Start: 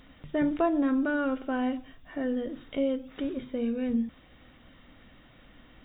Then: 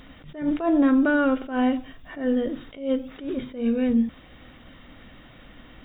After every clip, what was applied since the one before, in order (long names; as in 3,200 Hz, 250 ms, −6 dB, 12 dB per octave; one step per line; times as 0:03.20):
level that may rise only so fast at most 140 dB per second
level +7.5 dB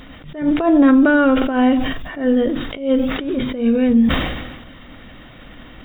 level that may fall only so fast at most 44 dB per second
level +7 dB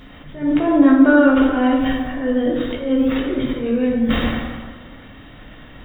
dense smooth reverb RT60 1.4 s, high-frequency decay 0.5×, DRR −2 dB
level −5 dB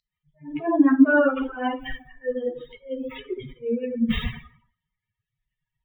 spectral dynamics exaggerated over time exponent 3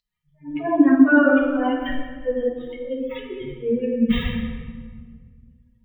rectangular room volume 2,200 cubic metres, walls mixed, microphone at 1.8 metres